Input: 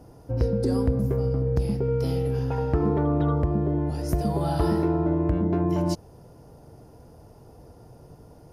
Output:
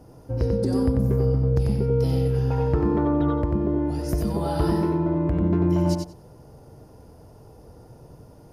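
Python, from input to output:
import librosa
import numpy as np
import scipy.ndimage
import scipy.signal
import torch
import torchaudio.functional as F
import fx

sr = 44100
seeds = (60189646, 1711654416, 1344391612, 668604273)

y = fx.notch(x, sr, hz=700.0, q=23.0)
y = fx.echo_feedback(y, sr, ms=92, feedback_pct=16, wet_db=-4.5)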